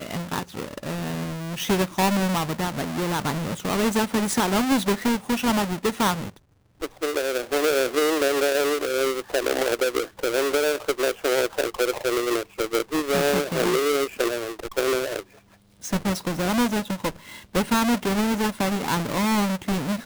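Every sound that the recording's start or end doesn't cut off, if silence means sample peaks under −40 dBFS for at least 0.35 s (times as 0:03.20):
0:06.81–0:15.21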